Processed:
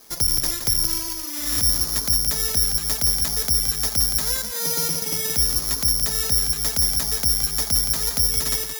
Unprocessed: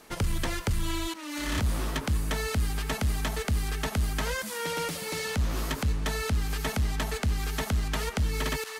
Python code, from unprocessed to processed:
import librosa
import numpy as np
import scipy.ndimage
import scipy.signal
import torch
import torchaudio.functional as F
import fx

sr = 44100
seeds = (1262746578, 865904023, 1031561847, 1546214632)

y = fx.low_shelf(x, sr, hz=280.0, db=10.0, at=(4.53, 5.32))
y = y + 10.0 ** (-7.5 / 20.0) * np.pad(y, (int(171 * sr / 1000.0), 0))[:len(y)]
y = (np.kron(scipy.signal.resample_poly(y, 1, 8), np.eye(8)[0]) * 8)[:len(y)]
y = y * librosa.db_to_amplitude(-3.0)